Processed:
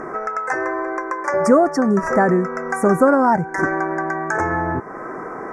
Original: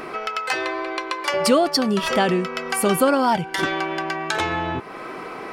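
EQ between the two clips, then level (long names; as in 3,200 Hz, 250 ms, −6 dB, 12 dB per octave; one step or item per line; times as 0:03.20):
elliptic band-stop filter 1,800–6,200 Hz, stop band 80 dB
high-frequency loss of the air 92 metres
+4.5 dB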